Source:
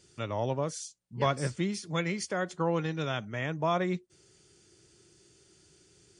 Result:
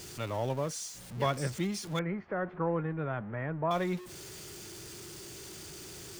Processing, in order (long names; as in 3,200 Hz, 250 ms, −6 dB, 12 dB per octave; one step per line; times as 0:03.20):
converter with a step at zero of −38 dBFS
0:01.99–0:03.71: low-pass filter 1,800 Hz 24 dB per octave
level −3 dB